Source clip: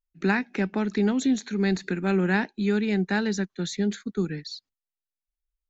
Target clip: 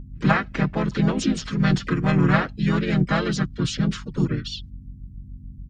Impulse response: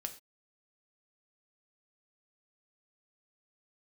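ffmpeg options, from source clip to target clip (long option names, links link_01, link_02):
-filter_complex "[0:a]aecho=1:1:6.3:0.9,aeval=exprs='val(0)+0.0112*(sin(2*PI*50*n/s)+sin(2*PI*2*50*n/s)/2+sin(2*PI*3*50*n/s)/3+sin(2*PI*4*50*n/s)/4+sin(2*PI*5*50*n/s)/5)':channel_layout=same,asplit=4[link_01][link_02][link_03][link_04];[link_02]asetrate=29433,aresample=44100,atempo=1.49831,volume=-7dB[link_05];[link_03]asetrate=35002,aresample=44100,atempo=1.25992,volume=0dB[link_06];[link_04]asetrate=55563,aresample=44100,atempo=0.793701,volume=-11dB[link_07];[link_01][link_05][link_06][link_07]amix=inputs=4:normalize=0,volume=-1.5dB"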